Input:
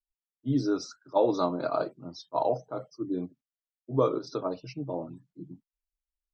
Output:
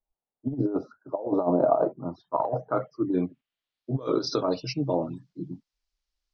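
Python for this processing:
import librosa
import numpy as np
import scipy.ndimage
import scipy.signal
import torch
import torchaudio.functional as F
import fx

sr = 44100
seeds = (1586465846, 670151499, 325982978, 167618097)

y = fx.over_compress(x, sr, threshold_db=-30.0, ratio=-0.5)
y = fx.filter_sweep_lowpass(y, sr, from_hz=740.0, to_hz=5100.0, start_s=1.7, end_s=4.12, q=2.2)
y = y * librosa.db_to_amplitude(4.5)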